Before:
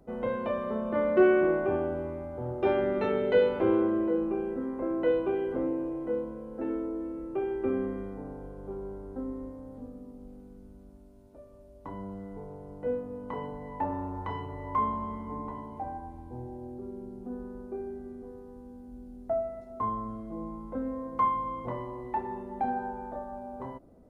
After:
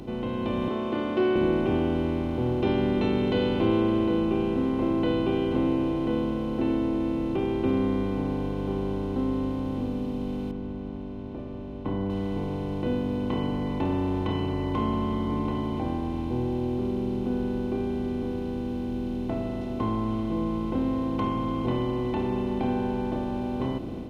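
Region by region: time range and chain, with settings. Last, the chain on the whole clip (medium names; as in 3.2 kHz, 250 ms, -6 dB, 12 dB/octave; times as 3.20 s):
0.68–1.36 s: high-pass 410 Hz + distance through air 65 m + comb 2.8 ms, depth 50%
10.51–12.10 s: low-pass 1.4 kHz + upward expansion, over -51 dBFS
whole clip: spectral levelling over time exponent 0.4; high-order bell 900 Hz -15.5 dB 2.8 oct; level rider gain up to 5 dB; trim +1.5 dB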